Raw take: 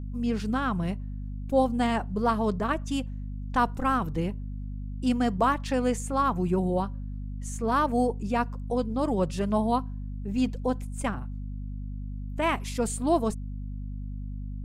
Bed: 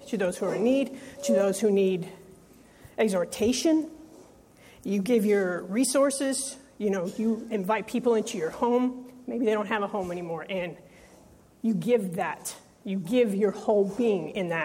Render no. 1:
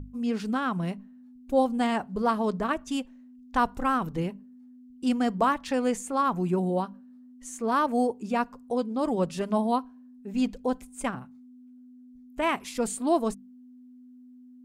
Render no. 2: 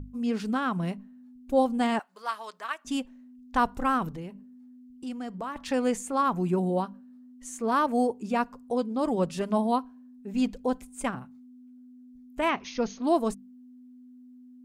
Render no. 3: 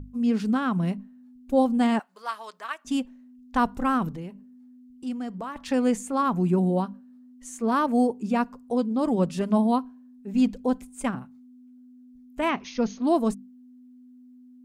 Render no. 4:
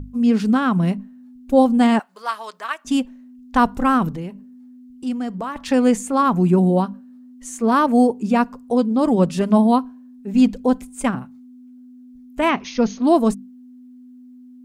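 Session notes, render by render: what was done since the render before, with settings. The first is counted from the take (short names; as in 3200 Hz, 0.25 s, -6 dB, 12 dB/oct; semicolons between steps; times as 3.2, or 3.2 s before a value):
notches 50/100/150/200 Hz
1.99–2.85 HPF 1300 Hz; 4.15–5.56 compressor 2:1, threshold -41 dBFS; 12.49–13.04 brick-wall FIR low-pass 6700 Hz
dynamic EQ 210 Hz, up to +6 dB, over -40 dBFS, Q 1.2
gain +7 dB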